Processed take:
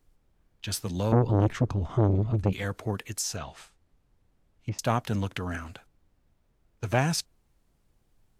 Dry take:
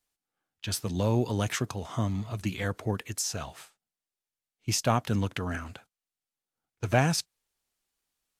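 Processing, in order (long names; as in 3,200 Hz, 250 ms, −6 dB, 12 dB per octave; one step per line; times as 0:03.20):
background noise brown −65 dBFS
0:01.12–0:02.53: RIAA equalisation playback
0:03.36–0:04.79: treble cut that deepens with the level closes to 1,100 Hz, closed at −27 dBFS
saturating transformer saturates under 510 Hz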